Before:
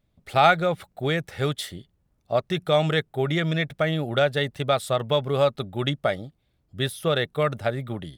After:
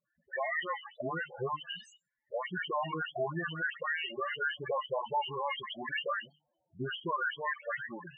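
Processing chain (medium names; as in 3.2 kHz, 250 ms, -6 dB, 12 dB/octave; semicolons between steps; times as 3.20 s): delay that grows with frequency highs late, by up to 263 ms; LFO band-pass sine 0.56 Hz 940–2300 Hz; dynamic bell 490 Hz, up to -7 dB, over -48 dBFS, Q 1.5; in parallel at 0 dB: compression 20:1, threshold -45 dBFS, peak gain reduction 22.5 dB; on the sum: formant shift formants -3 st; band-stop 1.3 kHz, Q 5.6; peak limiter -30 dBFS, peak gain reduction 11.5 dB; hum notches 50/100/150/200/250/300 Hz; loudest bins only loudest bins 8; trim +7 dB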